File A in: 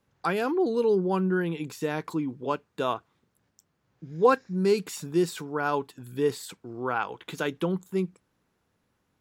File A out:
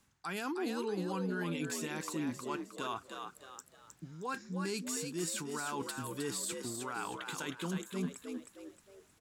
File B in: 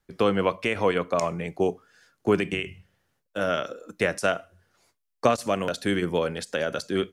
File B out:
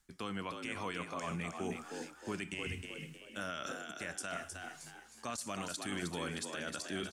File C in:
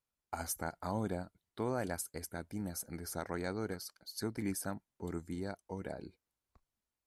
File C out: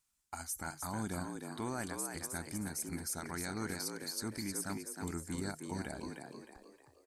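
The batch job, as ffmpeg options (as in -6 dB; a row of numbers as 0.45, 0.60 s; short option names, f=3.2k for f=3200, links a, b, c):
-filter_complex "[0:a]equalizer=f=125:t=o:w=1:g=-5,equalizer=f=500:t=o:w=1:g=-12,equalizer=f=8k:t=o:w=1:g=10,areverse,acompressor=threshold=-40dB:ratio=16,areverse,alimiter=level_in=11dB:limit=-24dB:level=0:latency=1:release=74,volume=-11dB,asplit=6[a][b][c][d][e][f];[b]adelay=312,afreqshift=67,volume=-5.5dB[g];[c]adelay=624,afreqshift=134,volume=-13.7dB[h];[d]adelay=936,afreqshift=201,volume=-21.9dB[i];[e]adelay=1248,afreqshift=268,volume=-30dB[j];[f]adelay=1560,afreqshift=335,volume=-38.2dB[k];[a][g][h][i][j][k]amix=inputs=6:normalize=0,volume=6.5dB"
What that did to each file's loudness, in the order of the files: -10.5, -14.5, +0.5 LU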